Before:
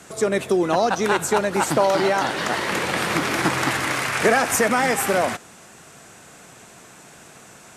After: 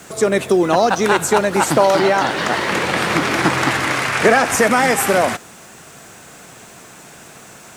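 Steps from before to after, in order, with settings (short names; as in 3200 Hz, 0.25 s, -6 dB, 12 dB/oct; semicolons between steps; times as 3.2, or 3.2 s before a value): 1.99–4.59 high shelf 9900 Hz -10 dB; bit-crush 9-bit; gain +5 dB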